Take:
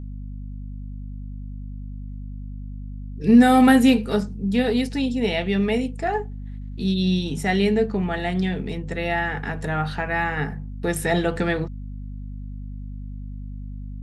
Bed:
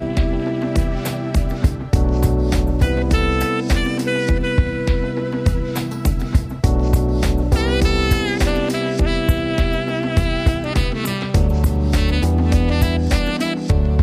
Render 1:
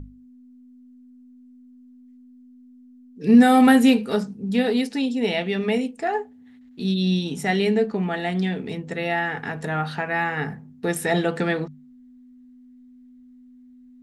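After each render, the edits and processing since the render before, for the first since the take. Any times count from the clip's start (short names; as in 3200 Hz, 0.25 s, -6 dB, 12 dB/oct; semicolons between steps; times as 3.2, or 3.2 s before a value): notches 50/100/150/200 Hz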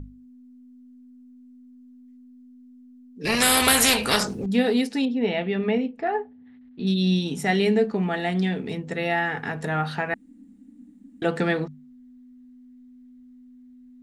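3.25–4.46 spectral compressor 4:1; 5.05–6.87 air absorption 270 m; 10.14–11.22 room tone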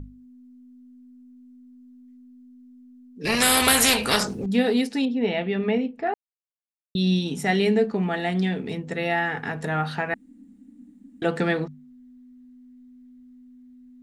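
6.14–6.95 mute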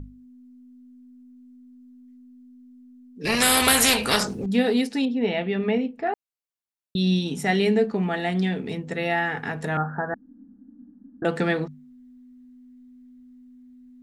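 9.77–11.25 steep low-pass 1700 Hz 96 dB/oct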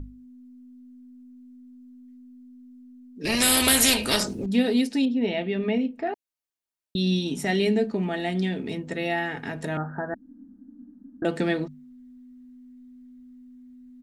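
comb 3.2 ms, depth 31%; dynamic EQ 1200 Hz, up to -7 dB, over -39 dBFS, Q 0.9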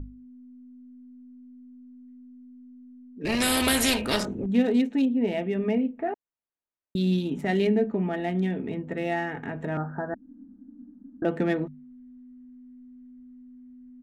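Wiener smoothing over 9 samples; high shelf 3400 Hz -8 dB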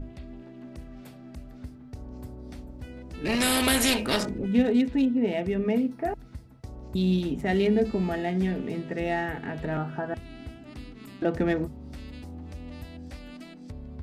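add bed -25.5 dB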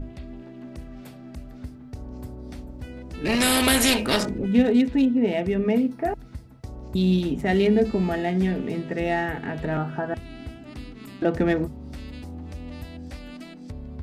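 gain +3.5 dB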